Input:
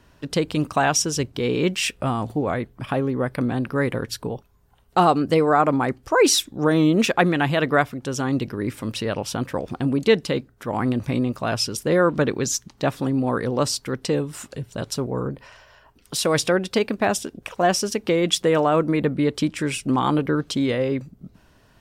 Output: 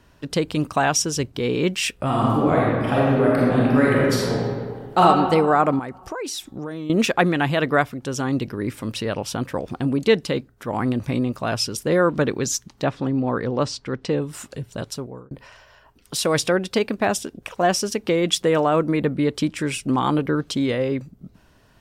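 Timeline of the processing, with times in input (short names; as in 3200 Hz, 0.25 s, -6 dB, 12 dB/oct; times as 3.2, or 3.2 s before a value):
2.05–5 reverb throw, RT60 1.9 s, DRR -5.5 dB
5.79–6.9 compressor 12:1, threshold -26 dBFS
12.84–14.22 air absorption 110 m
14.75–15.31 fade out linear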